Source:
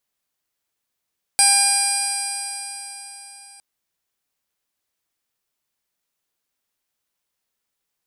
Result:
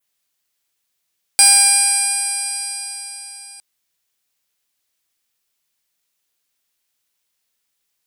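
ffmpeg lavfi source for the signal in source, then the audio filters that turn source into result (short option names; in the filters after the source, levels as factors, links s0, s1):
-f lavfi -i "aevalsrc='0.0891*pow(10,-3*t/4.08)*sin(2*PI*798.28*t)+0.0398*pow(10,-3*t/4.08)*sin(2*PI*1598.2*t)+0.0708*pow(10,-3*t/4.08)*sin(2*PI*2401.42*t)+0.0158*pow(10,-3*t/4.08)*sin(2*PI*3209.57*t)+0.0282*pow(10,-3*t/4.08)*sin(2*PI*4024.27*t)+0.133*pow(10,-3*t/4.08)*sin(2*PI*4847.1*t)+0.0473*pow(10,-3*t/4.08)*sin(2*PI*5679.65*t)+0.0106*pow(10,-3*t/4.08)*sin(2*PI*6523.44*t)+0.0299*pow(10,-3*t/4.08)*sin(2*PI*7379.97*t)+0.178*pow(10,-3*t/4.08)*sin(2*PI*8250.72*t)+0.112*pow(10,-3*t/4.08)*sin(2*PI*9137.09*t)+0.0251*pow(10,-3*t/4.08)*sin(2*PI*10040.47*t)+0.0891*pow(10,-3*t/4.08)*sin(2*PI*10962.18*t)+0.0158*pow(10,-3*t/4.08)*sin(2*PI*11903.5*t)':d=2.21:s=44100"
-filter_complex "[0:a]adynamicequalizer=threshold=0.0251:dfrequency=4900:dqfactor=1.5:tfrequency=4900:tqfactor=1.5:attack=5:release=100:ratio=0.375:range=3:mode=cutabove:tftype=bell,acrossover=split=1900[s0][s1];[s1]acontrast=77[s2];[s0][s2]amix=inputs=2:normalize=0"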